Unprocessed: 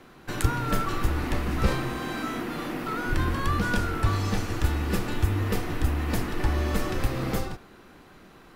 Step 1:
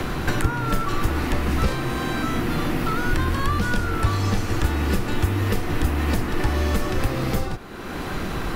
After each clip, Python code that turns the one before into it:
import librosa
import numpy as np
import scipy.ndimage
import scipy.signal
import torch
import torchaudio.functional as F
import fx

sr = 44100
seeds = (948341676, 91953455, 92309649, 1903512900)

y = fx.band_squash(x, sr, depth_pct=100)
y = y * 10.0 ** (3.5 / 20.0)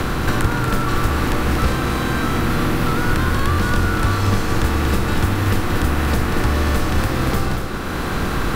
y = fx.bin_compress(x, sr, power=0.6)
y = y + 10.0 ** (-6.5 / 20.0) * np.pad(y, (int(234 * sr / 1000.0), 0))[:len(y)]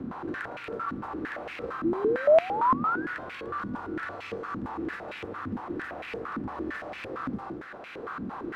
y = fx.spec_paint(x, sr, seeds[0], shape='rise', start_s=1.84, length_s=1.23, low_hz=320.0, high_hz=1700.0, level_db=-11.0)
y = fx.filter_held_bandpass(y, sr, hz=8.8, low_hz=240.0, high_hz=2400.0)
y = y * 10.0 ** (-4.5 / 20.0)